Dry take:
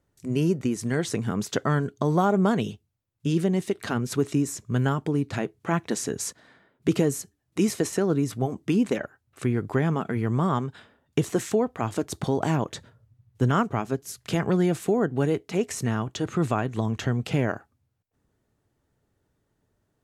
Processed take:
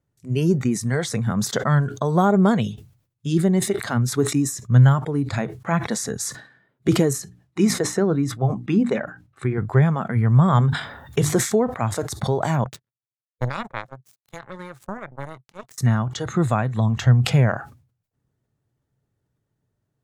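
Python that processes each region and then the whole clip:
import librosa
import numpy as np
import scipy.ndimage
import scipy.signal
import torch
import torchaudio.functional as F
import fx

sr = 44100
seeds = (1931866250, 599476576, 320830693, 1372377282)

y = fx.chain(x, sr, fx.lowpass(hz=4000.0, slope=6),
    fx.hum_notches(base_hz=60, count=5), at=(7.13, 9.58))
y = fx.chain(y, sr, fx.hum_notches(base_hz=50, count=7),
    fx.env_flatten(amount_pct=50), at=(10.48, 11.35))
y = fx.chain(y, sr, fx.power_curve(exponent=3.0),
    fx.notch(hz=710.0, q=11.0), at=(12.64, 15.78))
y = fx.peak_eq(y, sr, hz=130.0, db=10.5, octaves=0.7)
y = fx.noise_reduce_blind(y, sr, reduce_db=10)
y = fx.sustainer(y, sr, db_per_s=120.0)
y = y * 10.0 ** (3.5 / 20.0)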